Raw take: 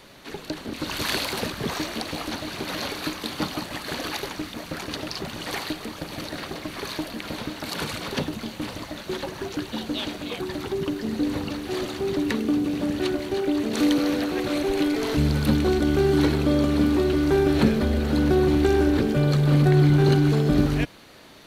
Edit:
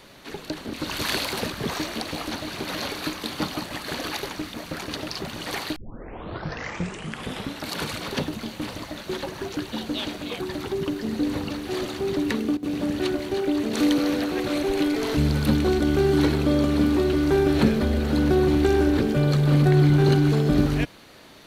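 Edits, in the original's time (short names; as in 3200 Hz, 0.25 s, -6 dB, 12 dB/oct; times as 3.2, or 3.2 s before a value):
5.76 tape start 1.88 s
12.26–12.94 dip -16.5 dB, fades 0.31 s logarithmic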